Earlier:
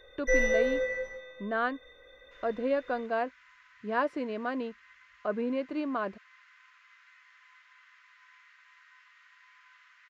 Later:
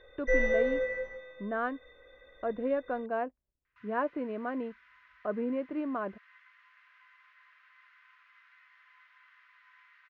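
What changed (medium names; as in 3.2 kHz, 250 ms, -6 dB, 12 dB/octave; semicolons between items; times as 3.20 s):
speech: add distance through air 360 m; second sound: entry +1.45 s; master: add distance through air 230 m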